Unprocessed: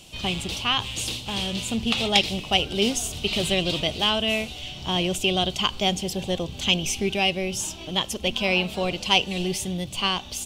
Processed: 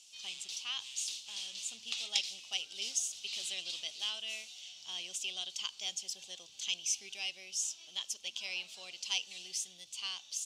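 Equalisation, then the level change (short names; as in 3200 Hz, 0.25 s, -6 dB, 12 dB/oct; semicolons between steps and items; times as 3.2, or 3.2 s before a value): band-pass 6100 Hz, Q 2; -3.5 dB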